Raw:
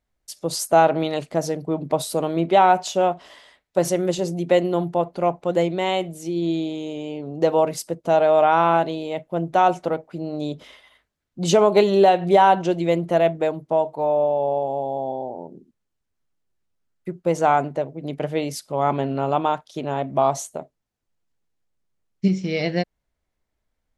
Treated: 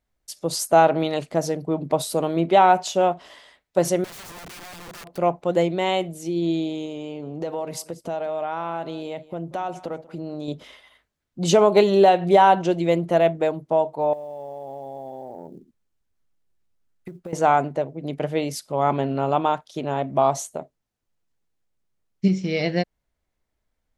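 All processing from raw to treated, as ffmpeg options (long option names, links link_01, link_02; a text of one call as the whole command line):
ffmpeg -i in.wav -filter_complex "[0:a]asettb=1/sr,asplit=3[link_01][link_02][link_03];[link_01]atrim=end=4.044[link_04];[link_02]atrim=start=4.04:end=5.18,asetpts=PTS-STARTPTS,afade=type=in:duration=0.004:curve=qsin,afade=type=out:start_time=1.136:duration=0.004:curve=qsin,acompressor=threshold=-30dB:ratio=8:attack=3.2:release=140:knee=1:detection=peak,aeval=exprs='(mod(59.6*val(0)+1,2)-1)/59.6':channel_layout=same[link_05];[link_03]atrim=start=5.176[link_06];[link_04][link_05]acrossfade=duration=0.004:curve1=hsin:curve2=qsin[link_07];[link_07][link_06]acrossfade=duration=0.004:curve1=qsin:curve2=hsin,asettb=1/sr,asplit=3[link_08][link_09][link_10];[link_08]atrim=end=6.854[link_11];[link_09]atrim=start=6.85:end=10.48,asetpts=PTS-STARTPTS,afade=type=in:duration=0.004:curve=qsin,afade=type=out:start_time=3.626:duration=0.004:curve=qsin,acompressor=threshold=-28dB:ratio=3:attack=3.2:release=140:knee=1:detection=peak,aecho=1:1:187:0.106,atrim=end_sample=160083[link_12];[link_10]atrim=start=10.476[link_13];[link_11][link_12]acrossfade=duration=0.004:curve1=hsin:curve2=qsin[link_14];[link_14][link_13]acrossfade=duration=0.004:curve1=qsin:curve2=hsin,asettb=1/sr,asplit=3[link_15][link_16][link_17];[link_15]atrim=end=14.134[link_18];[link_16]atrim=start=14.13:end=17.33,asetpts=PTS-STARTPTS,afade=type=in:duration=0.004:curve=qsin,afade=type=out:start_time=3.196:duration=0.004:curve=qsin,lowshelf=frequency=60:gain=5.5,acompressor=threshold=-31dB:ratio=12:attack=3.2:release=140:knee=1:detection=peak,acrusher=bits=9:mode=log:mix=0:aa=0.000001[link_19];[link_17]atrim=start=17.326[link_20];[link_18][link_19]acrossfade=duration=0.004:curve1=hsin:curve2=qsin[link_21];[link_21][link_20]acrossfade=duration=0.004:curve1=qsin:curve2=hsin" out.wav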